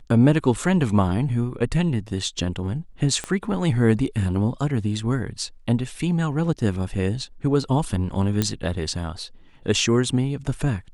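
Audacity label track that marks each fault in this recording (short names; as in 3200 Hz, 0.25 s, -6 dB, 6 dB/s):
3.240000	3.240000	pop -14 dBFS
8.420000	8.420000	pop -7 dBFS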